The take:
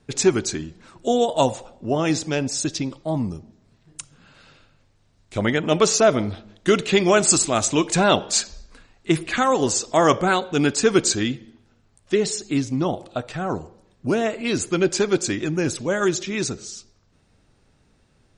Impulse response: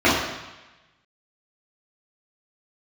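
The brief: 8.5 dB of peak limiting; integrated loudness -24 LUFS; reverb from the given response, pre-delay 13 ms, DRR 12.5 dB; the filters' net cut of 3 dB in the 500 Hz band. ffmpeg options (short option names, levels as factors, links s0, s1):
-filter_complex "[0:a]equalizer=f=500:t=o:g=-4,alimiter=limit=0.266:level=0:latency=1,asplit=2[s0][s1];[1:a]atrim=start_sample=2205,adelay=13[s2];[s1][s2]afir=irnorm=-1:irlink=0,volume=0.015[s3];[s0][s3]amix=inputs=2:normalize=0"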